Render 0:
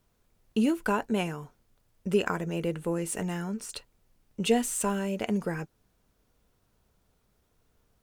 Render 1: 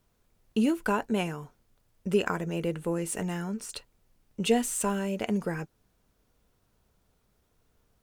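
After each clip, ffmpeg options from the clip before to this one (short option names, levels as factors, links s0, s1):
-af anull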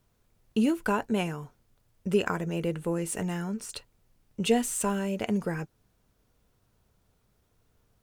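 -af "equalizer=f=110:t=o:w=0.77:g=4.5"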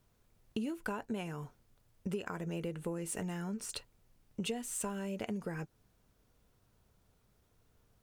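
-af "acompressor=threshold=0.0224:ratio=8,volume=0.841"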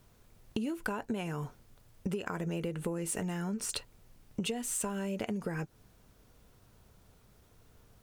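-af "acompressor=threshold=0.00794:ratio=3,volume=2.82"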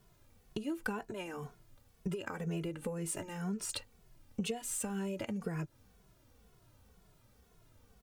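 -filter_complex "[0:a]asplit=2[s0][s1];[s1]adelay=2.3,afreqshift=-2[s2];[s0][s2]amix=inputs=2:normalize=1"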